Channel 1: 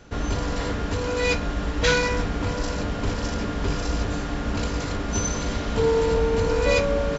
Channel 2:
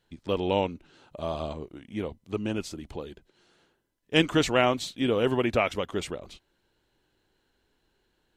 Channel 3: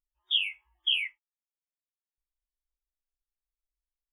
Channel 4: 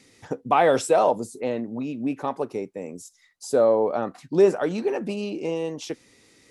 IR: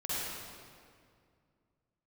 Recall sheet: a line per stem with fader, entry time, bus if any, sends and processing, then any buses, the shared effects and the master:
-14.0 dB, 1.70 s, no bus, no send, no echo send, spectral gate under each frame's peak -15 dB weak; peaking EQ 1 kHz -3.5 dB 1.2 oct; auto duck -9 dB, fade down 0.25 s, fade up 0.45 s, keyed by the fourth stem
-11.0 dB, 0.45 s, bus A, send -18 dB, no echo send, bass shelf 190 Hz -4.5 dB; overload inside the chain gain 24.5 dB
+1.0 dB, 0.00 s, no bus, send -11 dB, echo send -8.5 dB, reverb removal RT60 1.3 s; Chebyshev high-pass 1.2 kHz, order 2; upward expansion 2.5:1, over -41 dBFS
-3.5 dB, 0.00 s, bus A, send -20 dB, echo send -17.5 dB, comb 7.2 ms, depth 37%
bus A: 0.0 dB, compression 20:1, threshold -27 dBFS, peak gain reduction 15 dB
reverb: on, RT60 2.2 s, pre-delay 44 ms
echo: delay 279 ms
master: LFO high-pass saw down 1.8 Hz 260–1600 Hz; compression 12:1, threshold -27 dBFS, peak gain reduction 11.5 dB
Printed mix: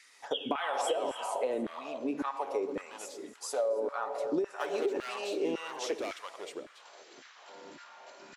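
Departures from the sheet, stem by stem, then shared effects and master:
stem 1 -14.0 dB -> -20.0 dB; stem 3 +1.0 dB -> -9.0 dB

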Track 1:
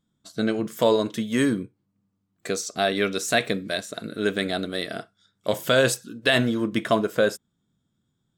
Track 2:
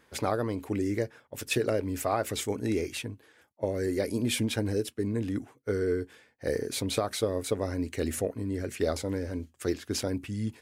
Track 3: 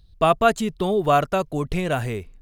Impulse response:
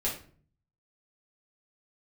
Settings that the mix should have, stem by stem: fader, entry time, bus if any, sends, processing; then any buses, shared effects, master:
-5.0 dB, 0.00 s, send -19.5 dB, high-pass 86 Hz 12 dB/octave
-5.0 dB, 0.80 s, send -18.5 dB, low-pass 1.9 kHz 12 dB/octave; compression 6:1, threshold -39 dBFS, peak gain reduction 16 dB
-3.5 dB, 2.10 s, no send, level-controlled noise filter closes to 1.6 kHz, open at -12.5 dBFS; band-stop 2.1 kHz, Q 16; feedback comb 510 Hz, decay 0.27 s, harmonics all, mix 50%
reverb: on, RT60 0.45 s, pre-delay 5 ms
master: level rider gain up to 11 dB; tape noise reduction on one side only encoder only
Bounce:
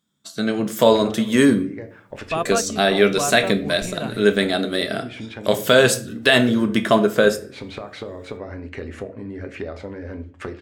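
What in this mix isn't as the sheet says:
stem 3 -3.5 dB -> -10.5 dB; reverb return +8.5 dB

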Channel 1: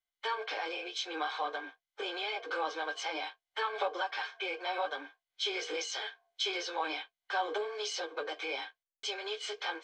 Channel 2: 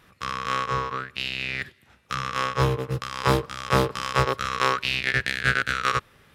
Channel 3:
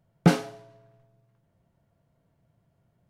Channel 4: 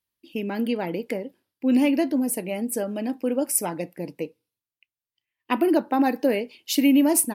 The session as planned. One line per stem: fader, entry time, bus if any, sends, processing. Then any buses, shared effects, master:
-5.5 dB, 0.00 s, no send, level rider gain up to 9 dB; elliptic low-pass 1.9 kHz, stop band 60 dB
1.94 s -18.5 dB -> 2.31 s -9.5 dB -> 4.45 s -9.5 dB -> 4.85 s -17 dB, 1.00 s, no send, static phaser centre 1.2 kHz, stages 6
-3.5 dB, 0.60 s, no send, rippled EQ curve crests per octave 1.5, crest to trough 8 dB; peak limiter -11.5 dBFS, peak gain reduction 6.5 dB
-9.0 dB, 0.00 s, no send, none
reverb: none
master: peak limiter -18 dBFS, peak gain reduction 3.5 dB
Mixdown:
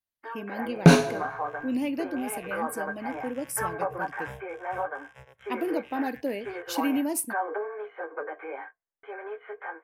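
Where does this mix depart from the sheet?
stem 2 -18.5 dB -> -27.0 dB; stem 3 -3.5 dB -> +8.5 dB; master: missing peak limiter -18 dBFS, peak gain reduction 3.5 dB

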